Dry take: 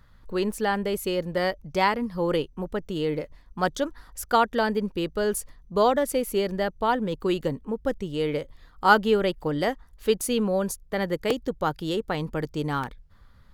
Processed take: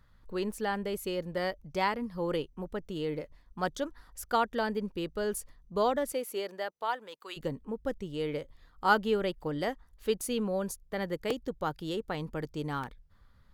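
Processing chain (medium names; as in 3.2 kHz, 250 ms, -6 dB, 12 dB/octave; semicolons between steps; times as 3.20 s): 6.12–7.36 s: high-pass 300 Hz -> 1.1 kHz 12 dB/octave; trim -7 dB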